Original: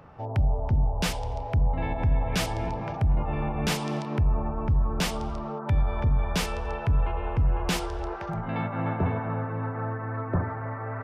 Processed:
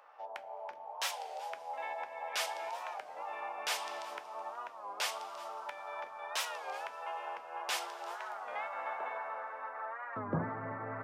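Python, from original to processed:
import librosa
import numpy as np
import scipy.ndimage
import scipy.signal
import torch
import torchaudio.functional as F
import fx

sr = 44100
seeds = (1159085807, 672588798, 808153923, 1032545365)

y = fx.highpass(x, sr, hz=fx.steps((0.0, 630.0), (10.18, 150.0)), slope=24)
y = y + 10.0 ** (-20.5 / 20.0) * np.pad(y, (int(374 * sr / 1000.0), 0))[:len(y)]
y = fx.rev_double_slope(y, sr, seeds[0], early_s=0.23, late_s=4.1, knee_db=-20, drr_db=9.5)
y = fx.record_warp(y, sr, rpm=33.33, depth_cents=160.0)
y = y * 10.0 ** (-5.0 / 20.0)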